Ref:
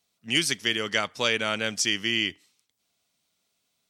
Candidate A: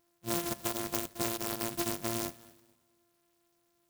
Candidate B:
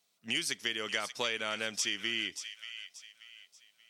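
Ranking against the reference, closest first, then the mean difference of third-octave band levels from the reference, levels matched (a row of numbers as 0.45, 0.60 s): B, A; 3.5, 13.0 dB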